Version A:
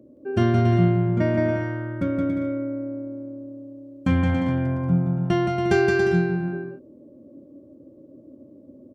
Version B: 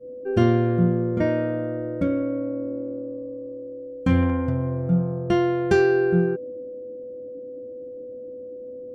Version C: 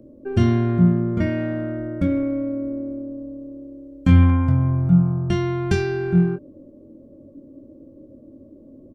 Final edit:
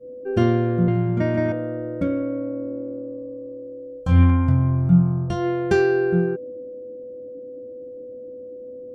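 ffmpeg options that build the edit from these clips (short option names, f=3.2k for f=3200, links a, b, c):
-filter_complex "[1:a]asplit=3[a][b][c];[a]atrim=end=0.882[d];[0:a]atrim=start=0.878:end=1.522[e];[b]atrim=start=1.518:end=4.21[f];[2:a]atrim=start=3.97:end=5.47[g];[c]atrim=start=5.23[h];[d][e]acrossfade=d=0.004:c1=hsin:c2=hsin[i];[i][f]acrossfade=d=0.004:c1=hsin:c2=hsin[j];[j][g]acrossfade=d=0.24:c1=tri:c2=tri[k];[k][h]acrossfade=d=0.24:c1=tri:c2=tri"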